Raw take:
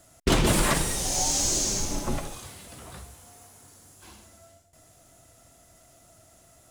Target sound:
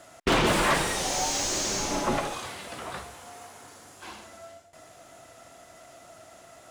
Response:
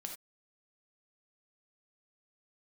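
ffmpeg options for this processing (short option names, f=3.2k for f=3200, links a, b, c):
-filter_complex "[0:a]asplit=2[a][b];[b]highpass=f=720:p=1,volume=23dB,asoftclip=type=tanh:threshold=-8.5dB[c];[a][c]amix=inputs=2:normalize=0,lowpass=f=2.5k:p=1,volume=-6dB,highshelf=f=5k:g=-4,volume=-4dB"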